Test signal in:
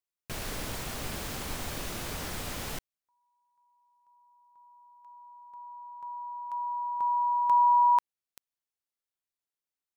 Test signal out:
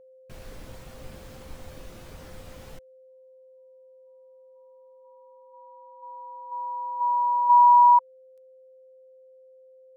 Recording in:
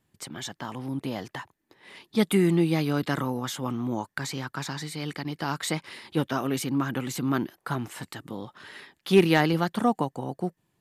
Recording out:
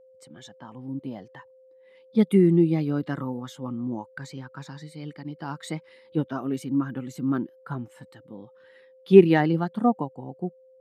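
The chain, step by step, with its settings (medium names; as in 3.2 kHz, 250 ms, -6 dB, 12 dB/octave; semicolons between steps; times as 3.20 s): whistle 520 Hz -44 dBFS; spectral contrast expander 1.5:1; trim +6.5 dB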